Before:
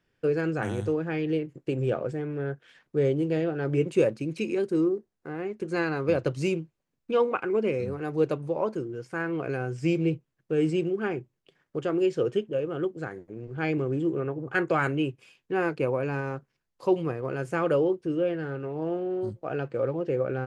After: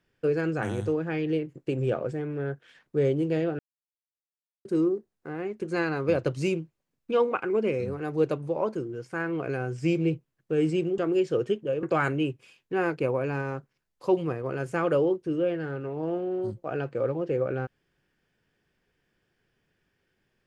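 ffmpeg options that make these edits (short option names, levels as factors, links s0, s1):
-filter_complex "[0:a]asplit=5[s0][s1][s2][s3][s4];[s0]atrim=end=3.59,asetpts=PTS-STARTPTS,afade=t=out:st=3.586:d=0.004:c=hsin[s5];[s1]atrim=start=3.59:end=4.65,asetpts=PTS-STARTPTS,volume=0[s6];[s2]atrim=start=4.65:end=10.982,asetpts=PTS-STARTPTS,afade=t=in:d=0.004:c=hsin[s7];[s3]atrim=start=11.838:end=12.692[s8];[s4]atrim=start=14.618[s9];[s5][s6][s7]concat=n=3:v=0:a=1[s10];[s10][s8]acrossfade=d=0.004:c1=hsin:c2=hsin[s11];[s11][s9]acrossfade=d=0.004:c1=hsin:c2=hsin"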